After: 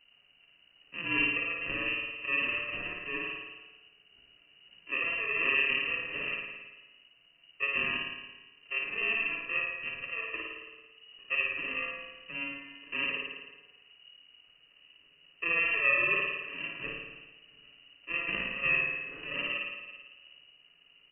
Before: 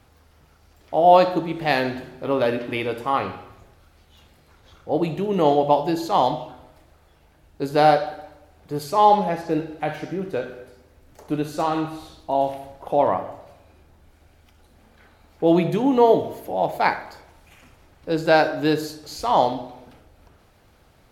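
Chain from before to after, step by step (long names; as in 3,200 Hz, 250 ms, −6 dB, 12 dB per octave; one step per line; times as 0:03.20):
samples in bit-reversed order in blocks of 64 samples
comb filter 7.3 ms, depth 45%
on a send: flutter between parallel walls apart 9.5 metres, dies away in 1.1 s
on the sum: voice inversion scrambler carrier 2,900 Hz
level −7.5 dB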